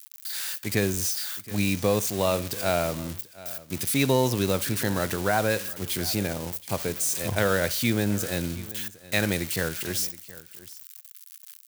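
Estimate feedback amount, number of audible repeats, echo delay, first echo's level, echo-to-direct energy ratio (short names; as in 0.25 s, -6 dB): no steady repeat, 3, 68 ms, -23.0 dB, -17.5 dB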